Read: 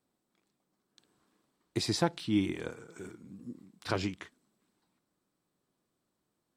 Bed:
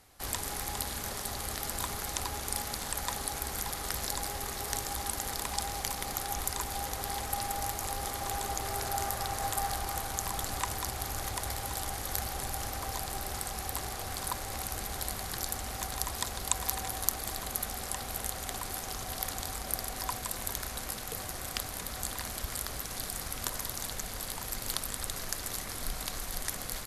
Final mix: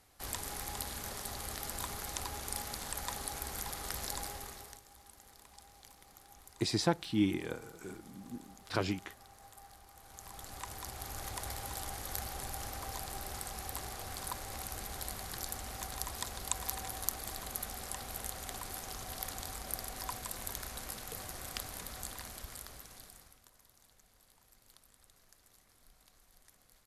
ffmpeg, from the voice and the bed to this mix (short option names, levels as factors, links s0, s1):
-filter_complex "[0:a]adelay=4850,volume=0.891[s0];[1:a]volume=4.22,afade=t=out:st=4.2:d=0.6:silence=0.125893,afade=t=in:st=9.96:d=1.44:silence=0.133352,afade=t=out:st=21.75:d=1.67:silence=0.0749894[s1];[s0][s1]amix=inputs=2:normalize=0"